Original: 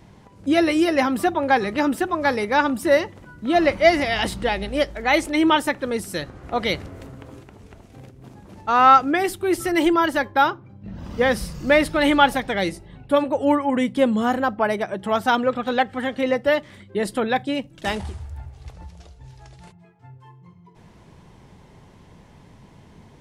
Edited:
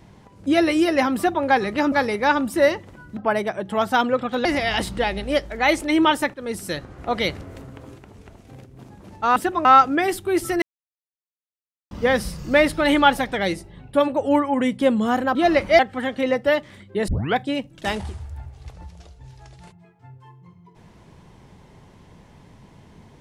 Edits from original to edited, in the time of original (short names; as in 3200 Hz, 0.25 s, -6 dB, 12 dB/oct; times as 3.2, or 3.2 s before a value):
1.92–2.21 move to 8.81
3.46–3.9 swap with 14.51–15.79
5.79–6.04 fade in, from -14.5 dB
9.78–11.07 mute
17.08 tape start 0.28 s